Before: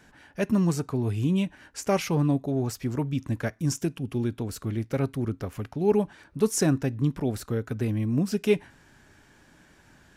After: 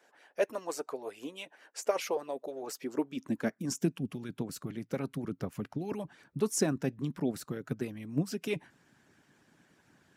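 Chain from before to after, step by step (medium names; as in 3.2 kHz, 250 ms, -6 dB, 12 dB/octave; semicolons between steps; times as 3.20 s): high-pass sweep 510 Hz -> 150 Hz, 2.27–4.15 s; harmonic-percussive split harmonic -16 dB; trim -4 dB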